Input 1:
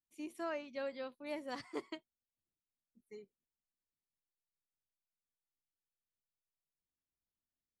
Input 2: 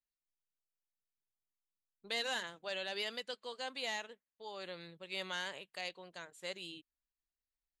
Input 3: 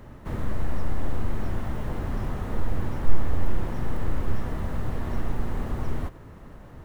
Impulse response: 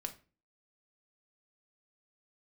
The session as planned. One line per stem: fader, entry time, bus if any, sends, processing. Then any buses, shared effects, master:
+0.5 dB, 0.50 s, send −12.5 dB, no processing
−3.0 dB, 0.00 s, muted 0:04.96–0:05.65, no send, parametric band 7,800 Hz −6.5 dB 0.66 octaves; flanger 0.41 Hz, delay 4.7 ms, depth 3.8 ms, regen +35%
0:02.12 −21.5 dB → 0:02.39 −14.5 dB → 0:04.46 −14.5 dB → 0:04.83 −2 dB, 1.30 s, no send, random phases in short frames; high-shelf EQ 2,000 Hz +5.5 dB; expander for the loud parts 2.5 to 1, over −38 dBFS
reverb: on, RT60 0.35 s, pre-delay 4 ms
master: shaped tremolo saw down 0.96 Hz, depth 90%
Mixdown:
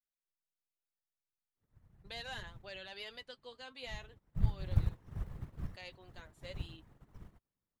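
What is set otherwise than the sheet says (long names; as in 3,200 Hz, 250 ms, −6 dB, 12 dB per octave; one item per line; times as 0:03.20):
stem 1: muted
reverb: off
master: missing shaped tremolo saw down 0.96 Hz, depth 90%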